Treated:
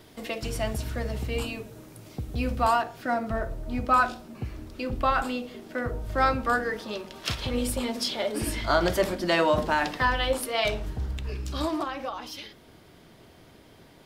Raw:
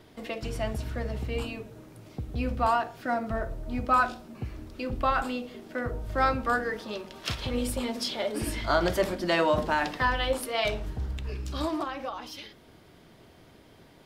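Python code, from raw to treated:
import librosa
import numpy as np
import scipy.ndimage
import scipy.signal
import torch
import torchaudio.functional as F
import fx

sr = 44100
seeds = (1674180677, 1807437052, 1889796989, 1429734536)

y = fx.high_shelf(x, sr, hz=4700.0, db=fx.steps((0.0, 8.5), (2.81, 2.5)))
y = F.gain(torch.from_numpy(y), 1.5).numpy()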